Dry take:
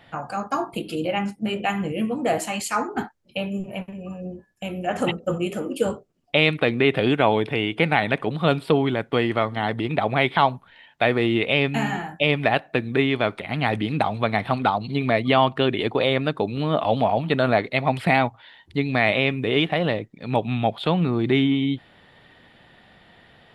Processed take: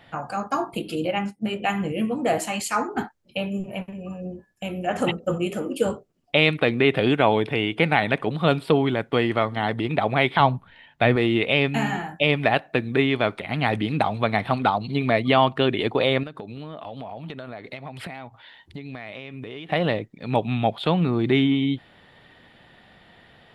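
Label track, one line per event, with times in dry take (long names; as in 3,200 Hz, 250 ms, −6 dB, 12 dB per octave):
1.110000	1.620000	expander for the loud parts, over −43 dBFS
10.400000	11.160000	bass and treble bass +8 dB, treble −4 dB
16.230000	19.690000	downward compressor 20 to 1, threshold −31 dBFS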